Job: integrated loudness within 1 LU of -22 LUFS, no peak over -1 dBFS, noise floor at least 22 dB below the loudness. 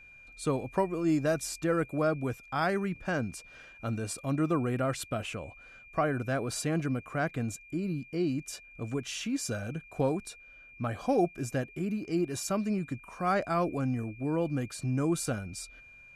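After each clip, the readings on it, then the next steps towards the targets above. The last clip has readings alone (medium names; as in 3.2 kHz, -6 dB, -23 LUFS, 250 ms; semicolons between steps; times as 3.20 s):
steady tone 2.4 kHz; tone level -51 dBFS; loudness -32.0 LUFS; peak level -15.0 dBFS; loudness target -22.0 LUFS
-> band-stop 2.4 kHz, Q 30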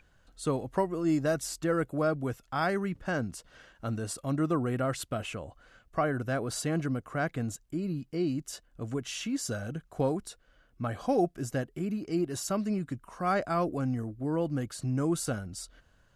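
steady tone not found; loudness -32.0 LUFS; peak level -15.0 dBFS; loudness target -22.0 LUFS
-> trim +10 dB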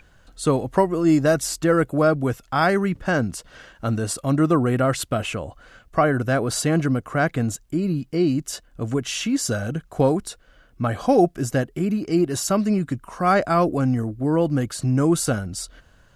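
loudness -22.0 LUFS; peak level -5.0 dBFS; noise floor -55 dBFS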